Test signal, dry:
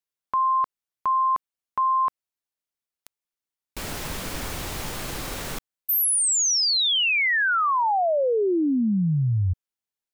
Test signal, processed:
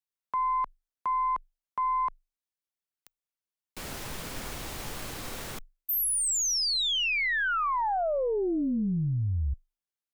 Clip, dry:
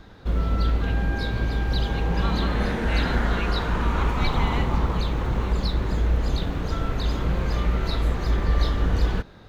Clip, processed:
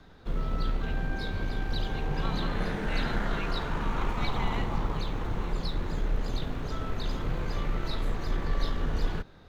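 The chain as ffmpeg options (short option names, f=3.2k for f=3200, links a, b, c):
-af "aeval=exprs='0.355*(cos(1*acos(clip(val(0)/0.355,-1,1)))-cos(1*PI/2))+0.0158*(cos(4*acos(clip(val(0)/0.355,-1,1)))-cos(4*PI/2))':c=same,afreqshift=-24,volume=-6dB"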